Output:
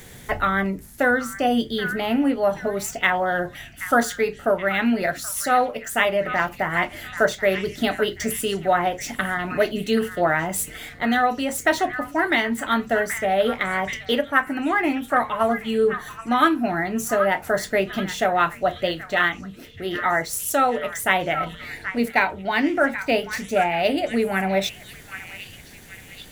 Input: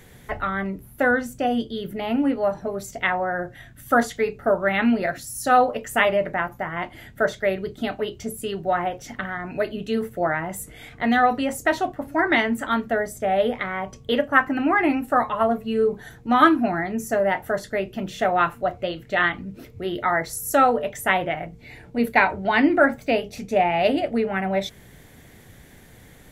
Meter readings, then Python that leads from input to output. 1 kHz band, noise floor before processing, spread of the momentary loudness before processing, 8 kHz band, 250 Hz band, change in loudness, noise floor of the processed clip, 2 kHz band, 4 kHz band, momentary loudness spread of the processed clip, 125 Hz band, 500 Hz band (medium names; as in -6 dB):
-0.5 dB, -48 dBFS, 11 LU, +6.0 dB, -0.5 dB, +0.5 dB, -43 dBFS, +1.5 dB, +4.0 dB, 8 LU, +1.0 dB, +0.5 dB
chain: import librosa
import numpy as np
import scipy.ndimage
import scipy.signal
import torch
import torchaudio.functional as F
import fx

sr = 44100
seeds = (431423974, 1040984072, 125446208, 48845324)

p1 = scipy.ndimage.median_filter(x, 3, mode='constant')
p2 = fx.high_shelf(p1, sr, hz=4300.0, db=10.5)
p3 = fx.hum_notches(p2, sr, base_hz=60, count=2)
p4 = p3 + fx.echo_stepped(p3, sr, ms=778, hz=1600.0, octaves=0.7, feedback_pct=70, wet_db=-10.0, dry=0)
y = fx.rider(p4, sr, range_db=4, speed_s=0.5)